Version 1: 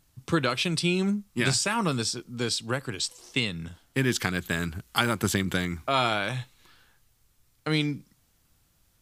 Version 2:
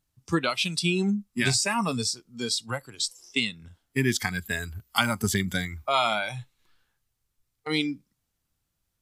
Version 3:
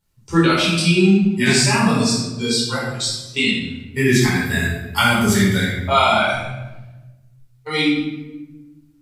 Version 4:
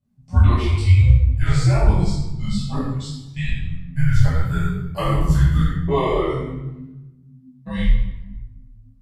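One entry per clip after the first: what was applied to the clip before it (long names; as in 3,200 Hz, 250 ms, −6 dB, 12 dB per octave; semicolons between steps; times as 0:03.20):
noise reduction from a noise print of the clip's start 14 dB; level +1.5 dB
rectangular room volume 530 cubic metres, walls mixed, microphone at 4.6 metres; level −1.5 dB
frequency shifter −260 Hz; tilt shelving filter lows +9.5 dB, about 920 Hz; micro pitch shift up and down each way 37 cents; level −3 dB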